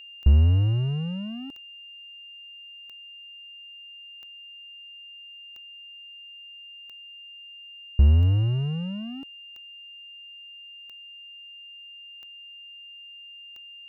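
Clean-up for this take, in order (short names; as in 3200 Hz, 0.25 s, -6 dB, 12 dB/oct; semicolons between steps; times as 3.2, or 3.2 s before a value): de-click; notch 2800 Hz, Q 30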